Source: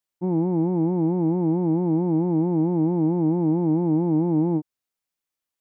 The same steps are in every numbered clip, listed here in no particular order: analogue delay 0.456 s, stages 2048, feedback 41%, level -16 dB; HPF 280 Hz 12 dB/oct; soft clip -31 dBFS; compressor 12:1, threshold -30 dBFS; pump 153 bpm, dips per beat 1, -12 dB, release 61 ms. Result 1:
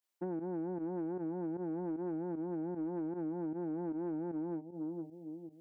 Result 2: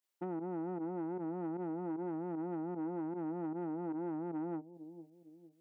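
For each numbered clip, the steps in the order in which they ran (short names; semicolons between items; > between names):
analogue delay > compressor > HPF > soft clip > pump; compressor > pump > analogue delay > soft clip > HPF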